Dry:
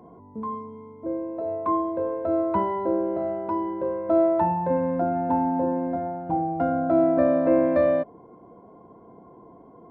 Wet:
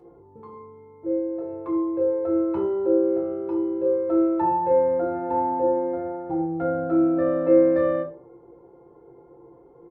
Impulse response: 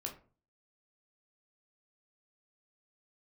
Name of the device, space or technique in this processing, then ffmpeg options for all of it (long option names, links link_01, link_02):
microphone above a desk: -filter_complex "[0:a]bandreject=frequency=1000:width=15,aecho=1:1:2.3:0.81,aecho=1:1:5.8:0.4[link_01];[1:a]atrim=start_sample=2205[link_02];[link_01][link_02]afir=irnorm=-1:irlink=0,volume=-3.5dB"